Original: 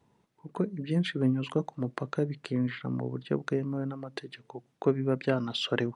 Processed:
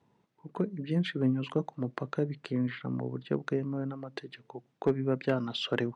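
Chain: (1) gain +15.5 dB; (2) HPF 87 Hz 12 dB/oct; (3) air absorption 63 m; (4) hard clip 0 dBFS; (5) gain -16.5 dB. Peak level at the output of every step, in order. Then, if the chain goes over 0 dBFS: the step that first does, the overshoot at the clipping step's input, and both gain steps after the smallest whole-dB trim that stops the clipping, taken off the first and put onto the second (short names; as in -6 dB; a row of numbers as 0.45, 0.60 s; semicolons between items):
+3.5, +4.0, +4.0, 0.0, -16.5 dBFS; step 1, 4.0 dB; step 1 +11.5 dB, step 5 -12.5 dB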